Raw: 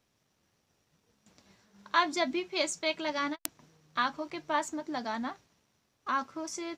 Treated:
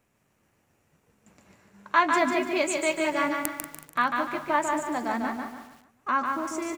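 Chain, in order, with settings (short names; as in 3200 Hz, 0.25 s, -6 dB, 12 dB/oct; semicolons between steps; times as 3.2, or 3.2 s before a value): band shelf 4400 Hz -10.5 dB 1.1 oct; on a send: feedback echo 0.146 s, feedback 37%, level -4.5 dB; on the sum: lo-fi delay 0.187 s, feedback 35%, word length 8-bit, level -11 dB; gain +5 dB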